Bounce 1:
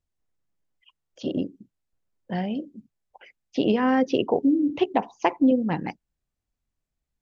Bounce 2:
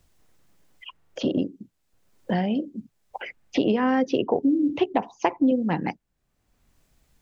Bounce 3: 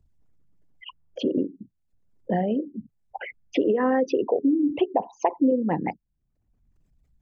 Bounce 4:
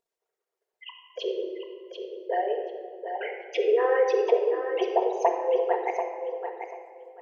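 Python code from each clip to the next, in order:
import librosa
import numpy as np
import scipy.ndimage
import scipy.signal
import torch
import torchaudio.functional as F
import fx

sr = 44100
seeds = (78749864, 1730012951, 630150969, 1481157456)

y1 = fx.band_squash(x, sr, depth_pct=70)
y2 = fx.envelope_sharpen(y1, sr, power=2.0)
y3 = fx.brickwall_highpass(y2, sr, low_hz=350.0)
y3 = fx.echo_feedback(y3, sr, ms=738, feedback_pct=20, wet_db=-8)
y3 = fx.room_shoebox(y3, sr, seeds[0], volume_m3=2200.0, walls='mixed', distance_m=1.7)
y3 = y3 * librosa.db_to_amplitude(-1.5)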